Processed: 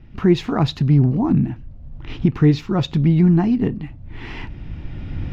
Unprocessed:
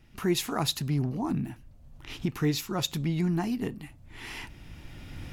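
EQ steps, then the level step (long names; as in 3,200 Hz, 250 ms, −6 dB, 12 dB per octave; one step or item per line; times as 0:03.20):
high-frequency loss of the air 220 metres
low-shelf EQ 390 Hz +9 dB
+6.5 dB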